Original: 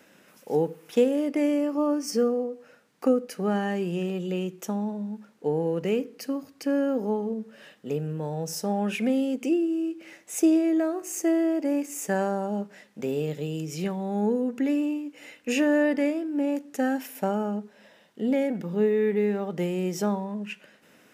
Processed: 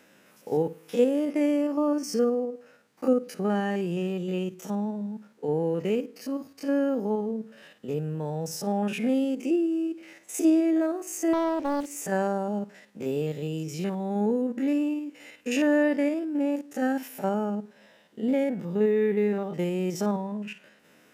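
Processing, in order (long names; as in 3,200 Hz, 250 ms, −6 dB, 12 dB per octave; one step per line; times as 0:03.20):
spectrum averaged block by block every 50 ms
0:11.33–0:11.97: highs frequency-modulated by the lows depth 0.55 ms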